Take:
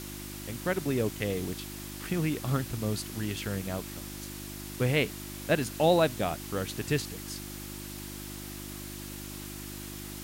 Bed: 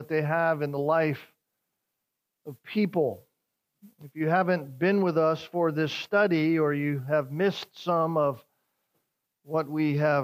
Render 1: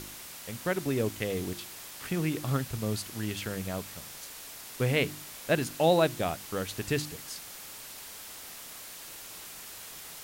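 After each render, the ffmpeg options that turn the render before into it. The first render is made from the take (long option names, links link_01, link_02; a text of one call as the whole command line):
ffmpeg -i in.wav -af "bandreject=frequency=50:width_type=h:width=4,bandreject=frequency=100:width_type=h:width=4,bandreject=frequency=150:width_type=h:width=4,bandreject=frequency=200:width_type=h:width=4,bandreject=frequency=250:width_type=h:width=4,bandreject=frequency=300:width_type=h:width=4,bandreject=frequency=350:width_type=h:width=4" out.wav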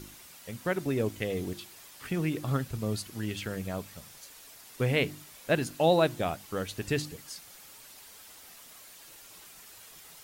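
ffmpeg -i in.wav -af "afftdn=noise_reduction=8:noise_floor=-45" out.wav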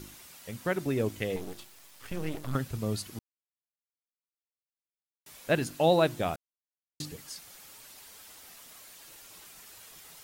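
ffmpeg -i in.wav -filter_complex "[0:a]asettb=1/sr,asplit=3[link_01][link_02][link_03];[link_01]atrim=end=1.364[link_04];[link_02]atrim=start=1.36:end=2.55,asetpts=PTS-STARTPTS,afade=type=in:duration=0.004:curve=qsin,afade=type=out:start_time=1.186:duration=0.004:curve=qsin,aeval=exprs='max(val(0),0)':channel_layout=same[link_05];[link_03]atrim=start=2.546[link_06];[link_04][link_05]acrossfade=duration=0.004:curve1=hsin:curve2=qsin[link_07];[link_07][link_06]acrossfade=duration=0.004:curve1=qsin:curve2=hsin,asplit=5[link_08][link_09][link_10][link_11][link_12];[link_08]atrim=end=3.19,asetpts=PTS-STARTPTS,afade=type=out:start_time=3.186:duration=0.004:curve=hsin[link_13];[link_09]atrim=start=3.19:end=5.26,asetpts=PTS-STARTPTS,volume=0[link_14];[link_10]atrim=start=5.26:end=6.36,asetpts=PTS-STARTPTS,afade=type=in:duration=0.004:curve=hsin,afade=type=out:start_time=1.096:duration=0.004:curve=hsin[link_15];[link_11]atrim=start=6.36:end=7,asetpts=PTS-STARTPTS,volume=0[link_16];[link_12]atrim=start=7,asetpts=PTS-STARTPTS,afade=type=in:duration=0.004:curve=hsin[link_17];[link_13][link_14][link_15][link_16][link_17]concat=n=5:v=0:a=1" out.wav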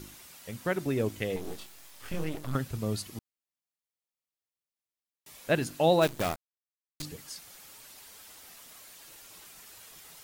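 ffmpeg -i in.wav -filter_complex "[0:a]asettb=1/sr,asplit=3[link_01][link_02][link_03];[link_01]atrim=end=1.424[link_04];[link_02]atrim=start=1.42:end=2.24,asetpts=PTS-STARTPTS,afade=type=in:duration=0.004:curve=qsin,afade=type=out:start_time=0.816:duration=0.004:curve=qsin,asplit=2[link_05][link_06];[link_06]adelay=24,volume=-2.5dB[link_07];[link_05][link_07]amix=inputs=2:normalize=0,atrim=end_sample=36162[link_08];[link_03]atrim=start=2.236[link_09];[link_04][link_08]acrossfade=duration=0.004:curve1=hsin:curve2=qsin[link_10];[link_10][link_09]acrossfade=duration=0.004:curve1=qsin:curve2=hsin,asettb=1/sr,asplit=3[link_11][link_12][link_13];[link_11]atrim=end=3.054[link_14];[link_12]atrim=start=3.05:end=5.38,asetpts=PTS-STARTPTS,afade=type=in:duration=0.004:curve=qsin,afade=type=out:start_time=2.326:duration=0.004:curve=qsin,bandreject=frequency=1500:width=8[link_15];[link_13]atrim=start=5.376[link_16];[link_14][link_15]acrossfade=duration=0.004:curve1=hsin:curve2=qsin[link_17];[link_17][link_16]acrossfade=duration=0.004:curve1=qsin:curve2=hsin,asplit=3[link_18][link_19][link_20];[link_18]afade=type=out:start_time=6.01:duration=0.02[link_21];[link_19]acrusher=bits=6:dc=4:mix=0:aa=0.000001,afade=type=in:start_time=6.01:duration=0.02,afade=type=out:start_time=7.02:duration=0.02[link_22];[link_20]afade=type=in:start_time=7.02:duration=0.02[link_23];[link_21][link_22][link_23]amix=inputs=3:normalize=0" out.wav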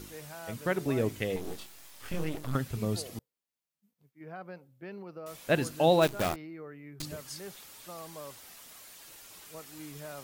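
ffmpeg -i in.wav -i bed.wav -filter_complex "[1:a]volume=-20dB[link_01];[0:a][link_01]amix=inputs=2:normalize=0" out.wav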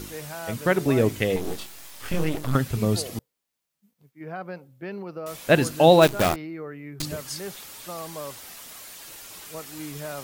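ffmpeg -i in.wav -af "volume=8.5dB" out.wav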